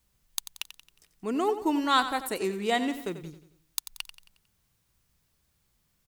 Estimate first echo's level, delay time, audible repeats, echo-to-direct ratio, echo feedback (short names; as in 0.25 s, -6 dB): -12.0 dB, 90 ms, 4, -11.0 dB, 46%